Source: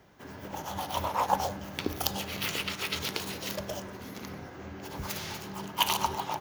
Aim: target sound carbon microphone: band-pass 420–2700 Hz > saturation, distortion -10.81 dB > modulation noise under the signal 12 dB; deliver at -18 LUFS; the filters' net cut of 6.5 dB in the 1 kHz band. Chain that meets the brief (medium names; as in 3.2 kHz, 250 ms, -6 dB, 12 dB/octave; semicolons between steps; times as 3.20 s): band-pass 420–2700 Hz; peaking EQ 1 kHz -7.5 dB; saturation -29.5 dBFS; modulation noise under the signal 12 dB; trim +23 dB